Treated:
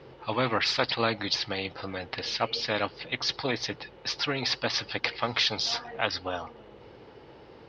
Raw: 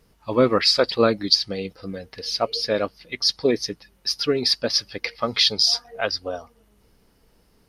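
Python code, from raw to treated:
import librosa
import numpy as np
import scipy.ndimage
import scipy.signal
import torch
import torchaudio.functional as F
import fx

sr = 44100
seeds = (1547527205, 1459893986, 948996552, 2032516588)

y = fx.cabinet(x, sr, low_hz=110.0, low_slope=12, high_hz=3800.0, hz=(130.0, 190.0, 390.0, 830.0), db=(6, -10, -8, 7))
y = fx.dmg_noise_band(y, sr, seeds[0], low_hz=320.0, high_hz=540.0, level_db=-64.0)
y = fx.spectral_comp(y, sr, ratio=2.0)
y = y * 10.0 ** (-2.5 / 20.0)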